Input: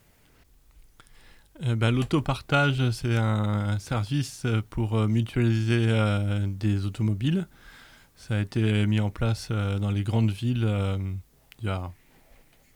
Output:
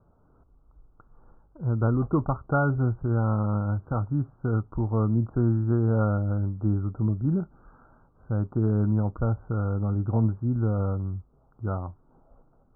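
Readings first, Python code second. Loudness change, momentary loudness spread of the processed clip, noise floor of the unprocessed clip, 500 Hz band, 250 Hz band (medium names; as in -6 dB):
-0.5 dB, 8 LU, -60 dBFS, 0.0 dB, 0.0 dB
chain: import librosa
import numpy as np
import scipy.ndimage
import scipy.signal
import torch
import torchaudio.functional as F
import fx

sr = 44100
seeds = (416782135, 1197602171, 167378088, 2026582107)

y = scipy.signal.sosfilt(scipy.signal.butter(16, 1400.0, 'lowpass', fs=sr, output='sos'), x)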